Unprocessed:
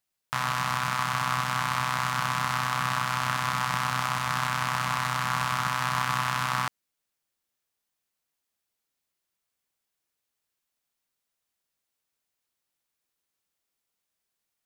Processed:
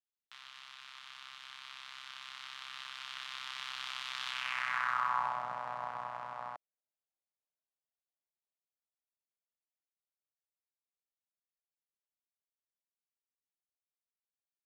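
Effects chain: Doppler pass-by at 4.71, 14 m/s, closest 13 m; band-pass sweep 3400 Hz -> 650 Hz, 4.3–5.45

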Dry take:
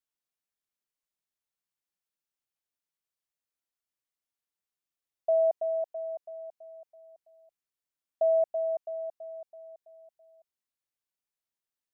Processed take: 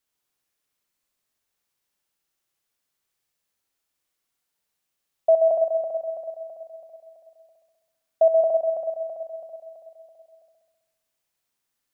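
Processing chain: flutter echo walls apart 11.2 m, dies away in 1.2 s; gain +9 dB

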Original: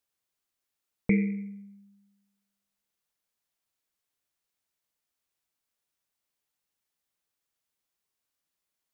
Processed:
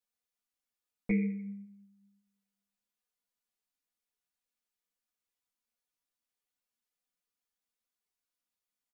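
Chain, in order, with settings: comb 4.1 ms; ensemble effect; gain -5 dB

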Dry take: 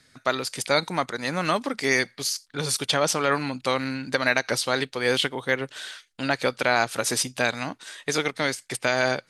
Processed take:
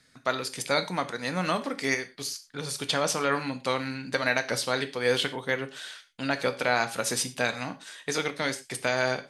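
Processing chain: 1.94–2.78 compressor 6:1, threshold -27 dBFS, peak gain reduction 9 dB; non-linear reverb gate 0.14 s falling, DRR 8.5 dB; gain -4 dB

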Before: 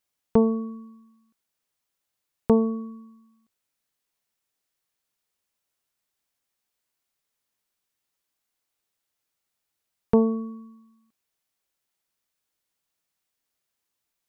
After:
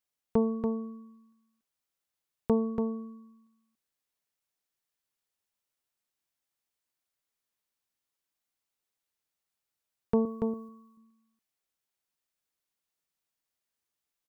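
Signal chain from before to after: 10.25–10.69 tilt +3 dB/oct; echo 0.285 s -5.5 dB; gain -7 dB

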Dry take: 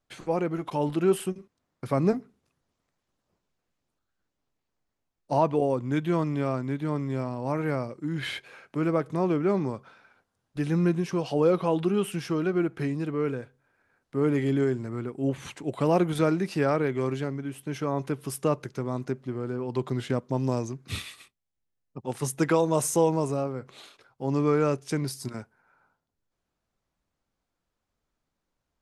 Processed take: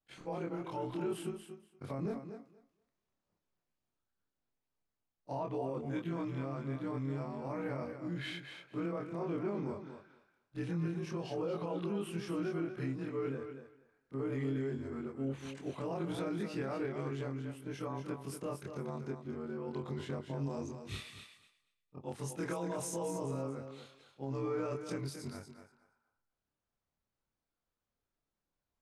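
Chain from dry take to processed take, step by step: short-time reversal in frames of 59 ms; high shelf 11000 Hz -11.5 dB; limiter -23.5 dBFS, peak gain reduction 10.5 dB; thinning echo 0.236 s, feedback 16%, high-pass 180 Hz, level -8 dB; gain -5.5 dB

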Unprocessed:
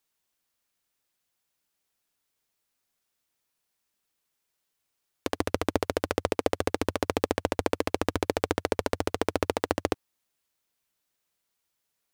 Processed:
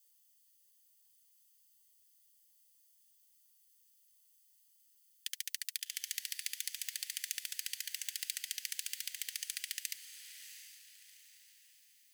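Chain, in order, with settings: minimum comb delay 0.64 ms; elliptic high-pass 1900 Hz, stop band 50 dB; differentiator; on a send: diffused feedback echo 0.715 s, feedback 41%, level -10.5 dB; on the sum: gain +10.5 dB

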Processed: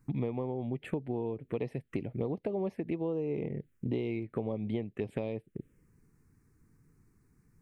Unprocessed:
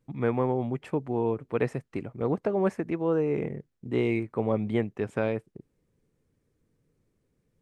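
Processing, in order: compressor 10:1, threshold -38 dBFS, peak gain reduction 17.5 dB; envelope phaser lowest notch 550 Hz, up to 1500 Hz, full sweep at -38 dBFS; gain +8.5 dB

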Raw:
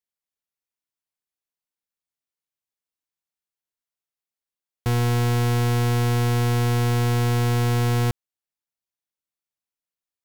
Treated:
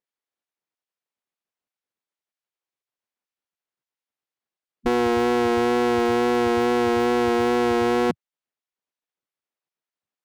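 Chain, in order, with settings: wow and flutter 18 cents; RIAA curve playback; spectral gate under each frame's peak -15 dB weak; gain +5.5 dB

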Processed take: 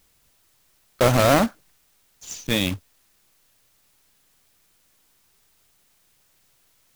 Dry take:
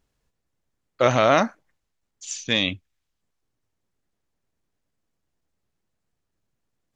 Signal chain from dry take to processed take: block floating point 3-bit; low shelf 460 Hz +9.5 dB; requantised 10-bit, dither triangular; gain -3.5 dB

